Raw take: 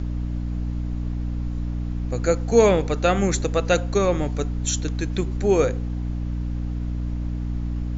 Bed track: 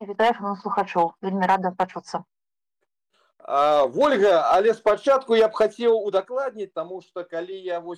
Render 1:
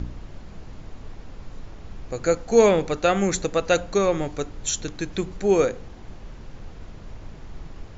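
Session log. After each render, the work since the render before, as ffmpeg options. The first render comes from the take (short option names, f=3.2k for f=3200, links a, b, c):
-af "bandreject=f=60:t=h:w=4,bandreject=f=120:t=h:w=4,bandreject=f=180:t=h:w=4,bandreject=f=240:t=h:w=4,bandreject=f=300:t=h:w=4"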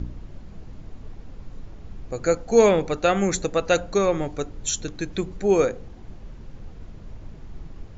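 -af "afftdn=nr=6:nf=-42"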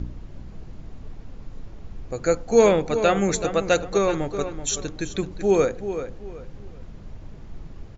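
-filter_complex "[0:a]asplit=2[a][b];[b]adelay=380,lowpass=f=3.8k:p=1,volume=-10dB,asplit=2[c][d];[d]adelay=380,lowpass=f=3.8k:p=1,volume=0.29,asplit=2[e][f];[f]adelay=380,lowpass=f=3.8k:p=1,volume=0.29[g];[a][c][e][g]amix=inputs=4:normalize=0"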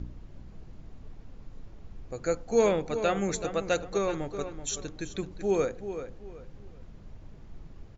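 -af "volume=-7.5dB"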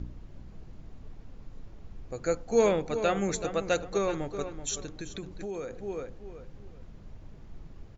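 -filter_complex "[0:a]asettb=1/sr,asplit=3[a][b][c];[a]atrim=end=4.804[d];[b]atrim=start=4.8:end=5.78,asetpts=PTS-STARTPTS,afade=t=in:d=0.004:c=qsin,afade=t=out:st=0.976:d=0.004:c=qsin,acompressor=threshold=-33dB:ratio=6:attack=3.2:release=140:knee=1:detection=peak[e];[c]atrim=start=5.776[f];[d][e]acrossfade=d=0.004:c1=hsin:c2=qsin[g];[g][f]acrossfade=d=0.004:c1=qsin:c2=hsin"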